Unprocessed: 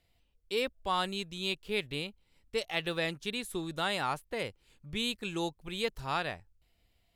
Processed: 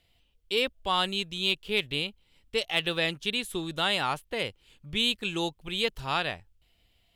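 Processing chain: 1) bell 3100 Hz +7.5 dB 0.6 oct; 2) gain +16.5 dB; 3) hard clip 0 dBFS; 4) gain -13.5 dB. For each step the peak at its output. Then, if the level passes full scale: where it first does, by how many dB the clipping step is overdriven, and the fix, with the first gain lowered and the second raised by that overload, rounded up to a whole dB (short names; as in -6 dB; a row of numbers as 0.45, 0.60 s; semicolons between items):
-13.0, +3.5, 0.0, -13.5 dBFS; step 2, 3.5 dB; step 2 +12.5 dB, step 4 -9.5 dB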